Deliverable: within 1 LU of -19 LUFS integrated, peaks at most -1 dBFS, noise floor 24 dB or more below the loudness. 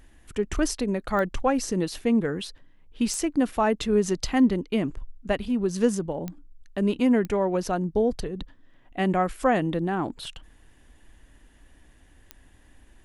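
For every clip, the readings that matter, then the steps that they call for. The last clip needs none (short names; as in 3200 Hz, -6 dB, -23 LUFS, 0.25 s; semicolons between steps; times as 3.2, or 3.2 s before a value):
clicks 5; loudness -26.0 LUFS; peak -8.5 dBFS; loudness target -19.0 LUFS
-> de-click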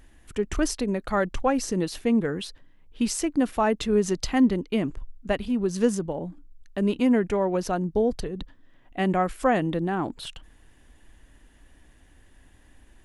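clicks 0; loudness -26.0 LUFS; peak -8.5 dBFS; loudness target -19.0 LUFS
-> gain +7 dB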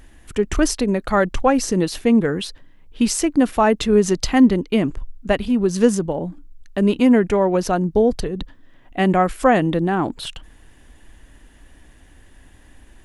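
loudness -19.0 LUFS; peak -1.5 dBFS; noise floor -49 dBFS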